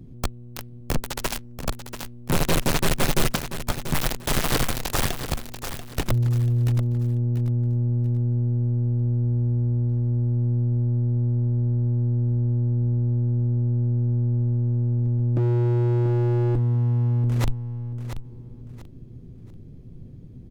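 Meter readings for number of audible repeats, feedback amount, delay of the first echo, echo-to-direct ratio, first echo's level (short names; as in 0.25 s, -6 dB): 3, 28%, 0.687 s, -9.5 dB, -10.0 dB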